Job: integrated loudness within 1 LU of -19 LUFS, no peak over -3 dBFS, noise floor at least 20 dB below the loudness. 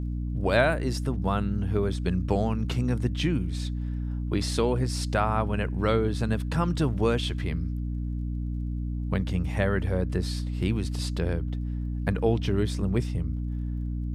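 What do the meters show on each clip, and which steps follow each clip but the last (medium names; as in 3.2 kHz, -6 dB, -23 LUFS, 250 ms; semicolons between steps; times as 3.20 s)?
tick rate 23 per s; hum 60 Hz; highest harmonic 300 Hz; hum level -28 dBFS; loudness -28.0 LUFS; peak level -9.5 dBFS; loudness target -19.0 LUFS
-> de-click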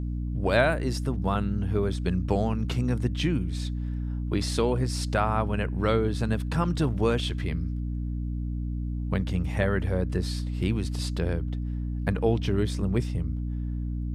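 tick rate 0 per s; hum 60 Hz; highest harmonic 300 Hz; hum level -28 dBFS
-> de-hum 60 Hz, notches 5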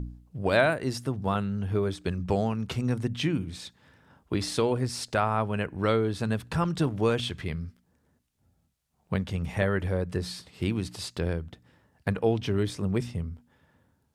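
hum not found; loudness -29.0 LUFS; peak level -10.5 dBFS; loudness target -19.0 LUFS
-> trim +10 dB; peak limiter -3 dBFS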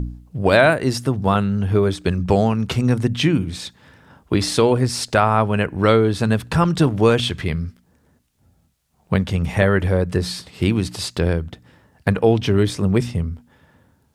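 loudness -19.0 LUFS; peak level -3.0 dBFS; noise floor -61 dBFS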